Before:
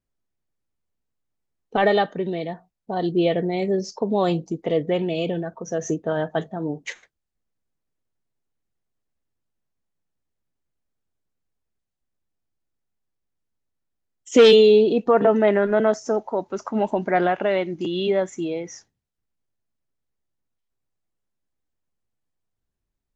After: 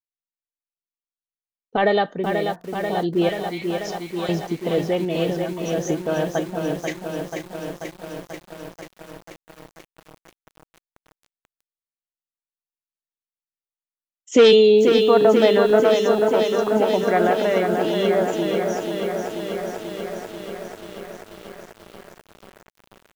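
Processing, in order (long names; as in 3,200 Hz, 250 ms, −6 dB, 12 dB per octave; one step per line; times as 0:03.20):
0:03.29–0:04.29: high-pass filter 1,300 Hz 24 dB per octave
downward expander −40 dBFS
feedback echo at a low word length 487 ms, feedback 80%, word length 7 bits, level −5.5 dB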